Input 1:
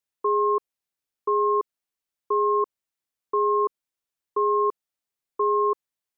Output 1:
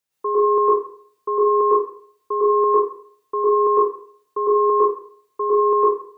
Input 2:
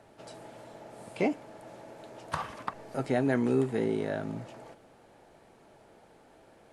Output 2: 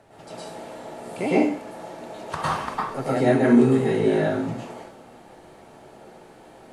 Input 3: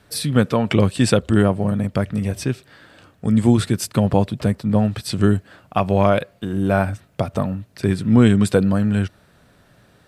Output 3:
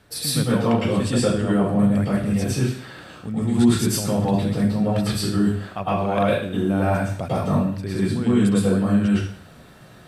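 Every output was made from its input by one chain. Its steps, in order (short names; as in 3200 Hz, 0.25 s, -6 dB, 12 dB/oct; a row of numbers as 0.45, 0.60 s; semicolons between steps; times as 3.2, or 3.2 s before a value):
reverse; compressor 6:1, threshold -23 dBFS; reverse; plate-style reverb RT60 0.54 s, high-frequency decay 1×, pre-delay 95 ms, DRR -8 dB; normalise peaks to -6 dBFS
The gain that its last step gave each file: +4.5, +2.0, -1.5 dB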